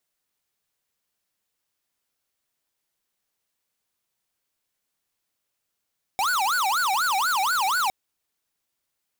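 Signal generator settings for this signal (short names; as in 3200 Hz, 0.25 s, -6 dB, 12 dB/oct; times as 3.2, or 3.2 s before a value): siren wail 755–1490 Hz 4.1/s square -23 dBFS 1.71 s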